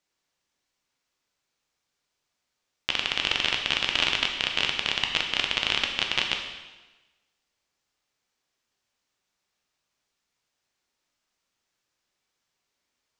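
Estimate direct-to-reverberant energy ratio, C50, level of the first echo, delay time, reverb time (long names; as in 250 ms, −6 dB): 2.0 dB, 5.5 dB, no echo audible, no echo audible, 1.2 s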